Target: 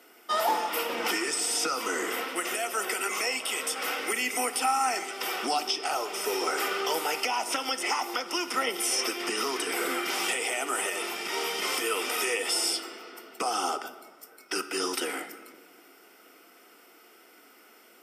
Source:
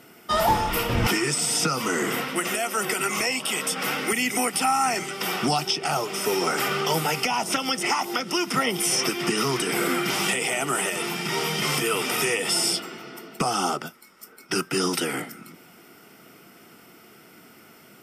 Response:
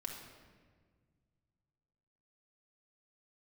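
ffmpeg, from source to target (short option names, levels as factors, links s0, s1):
-filter_complex "[0:a]highpass=f=320:w=0.5412,highpass=f=320:w=1.3066,asplit=2[s0][s1];[1:a]atrim=start_sample=2205[s2];[s1][s2]afir=irnorm=-1:irlink=0,volume=0.708[s3];[s0][s3]amix=inputs=2:normalize=0,volume=0.422"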